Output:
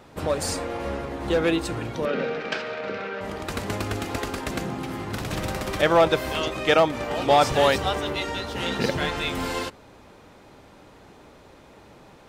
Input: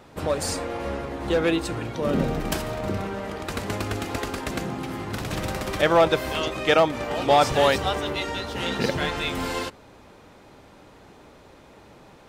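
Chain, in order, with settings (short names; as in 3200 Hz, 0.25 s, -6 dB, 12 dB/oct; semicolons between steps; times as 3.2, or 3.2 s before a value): 2.05–3.21 speaker cabinet 310–4900 Hz, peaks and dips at 330 Hz -9 dB, 470 Hz +6 dB, 690 Hz -4 dB, 1000 Hz -6 dB, 1500 Hz +7 dB, 2400 Hz +6 dB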